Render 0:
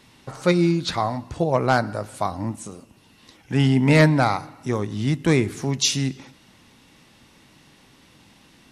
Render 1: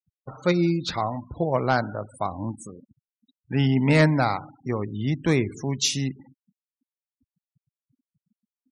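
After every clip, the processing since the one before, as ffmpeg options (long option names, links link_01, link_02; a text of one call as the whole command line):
ffmpeg -i in.wav -af "afftfilt=real='re*gte(hypot(re,im),0.02)':imag='im*gte(hypot(re,im),0.02)':win_size=1024:overlap=0.75,volume=-3dB" out.wav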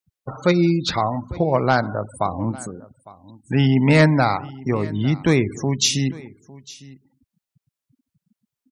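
ffmpeg -i in.wav -filter_complex "[0:a]asplit=2[link_01][link_02];[link_02]acompressor=threshold=-28dB:ratio=6,volume=-2dB[link_03];[link_01][link_03]amix=inputs=2:normalize=0,aecho=1:1:855:0.0891,volume=2.5dB" out.wav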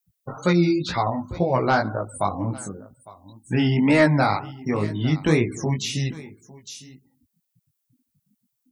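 ffmpeg -i in.wav -filter_complex "[0:a]aemphasis=mode=production:type=50kf,flanger=delay=16:depth=4.8:speed=2,acrossover=split=2600[link_01][link_02];[link_02]acompressor=threshold=-34dB:ratio=4:attack=1:release=60[link_03];[link_01][link_03]amix=inputs=2:normalize=0,volume=1dB" out.wav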